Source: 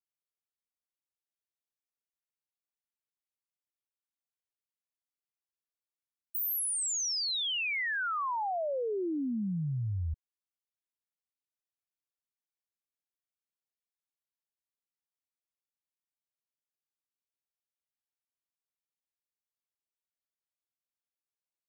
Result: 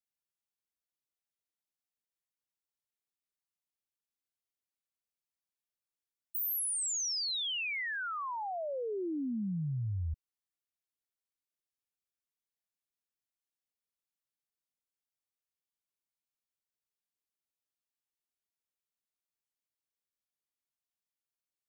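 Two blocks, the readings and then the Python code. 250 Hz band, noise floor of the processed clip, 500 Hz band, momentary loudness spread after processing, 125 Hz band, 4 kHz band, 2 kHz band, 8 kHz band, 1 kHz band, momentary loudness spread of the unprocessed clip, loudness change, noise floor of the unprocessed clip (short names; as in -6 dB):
-2.5 dB, under -85 dBFS, -3.5 dB, 7 LU, -1.5 dB, -2.5 dB, -4.0 dB, -1.5 dB, -5.0 dB, 6 LU, -2.5 dB, under -85 dBFS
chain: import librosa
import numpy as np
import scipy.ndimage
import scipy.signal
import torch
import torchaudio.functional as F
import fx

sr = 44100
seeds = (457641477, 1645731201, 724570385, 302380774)

y = fx.peak_eq(x, sr, hz=1000.0, db=-3.5, octaves=2.6)
y = y * 10.0 ** (-1.5 / 20.0)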